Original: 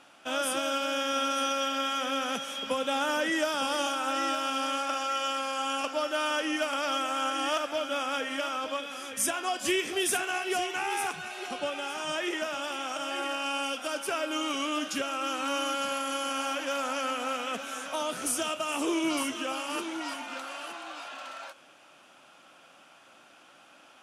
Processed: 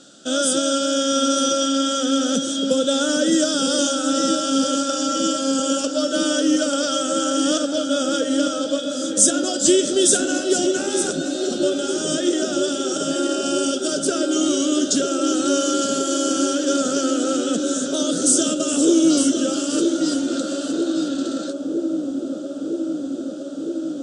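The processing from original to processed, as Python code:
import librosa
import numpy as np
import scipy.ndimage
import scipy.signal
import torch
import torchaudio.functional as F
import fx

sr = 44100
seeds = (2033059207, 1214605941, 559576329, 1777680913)

p1 = fx.curve_eq(x, sr, hz=(100.0, 180.0, 560.0, 1000.0, 1400.0, 2300.0, 3600.0, 5400.0, 8100.0, 12000.0), db=(0, 10, 3, -22, -1, -20, 7, 7, 13, -22))
p2 = p1 + fx.echo_wet_lowpass(p1, sr, ms=960, feedback_pct=84, hz=520.0, wet_db=-5.0, dry=0)
y = p2 * 10.0 ** (7.5 / 20.0)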